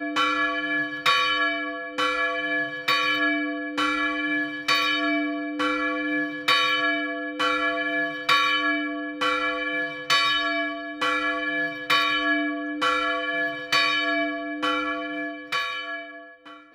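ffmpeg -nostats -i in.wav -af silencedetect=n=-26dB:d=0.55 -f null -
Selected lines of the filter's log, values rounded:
silence_start: 15.99
silence_end: 16.74 | silence_duration: 0.75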